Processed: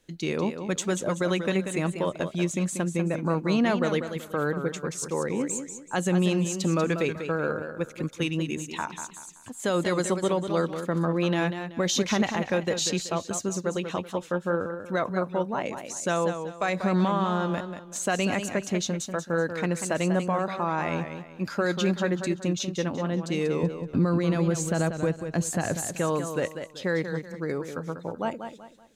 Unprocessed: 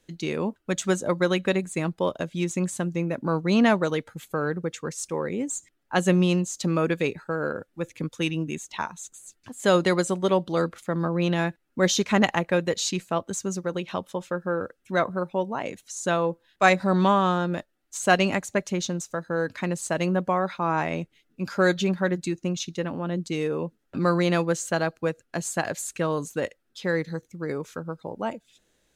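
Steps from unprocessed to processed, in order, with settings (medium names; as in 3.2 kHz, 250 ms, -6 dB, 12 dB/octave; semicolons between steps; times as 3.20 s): 23.63–25.86 s: bass shelf 300 Hz +12 dB; peak limiter -16 dBFS, peak gain reduction 11.5 dB; modulated delay 190 ms, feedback 33%, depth 92 cents, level -8.5 dB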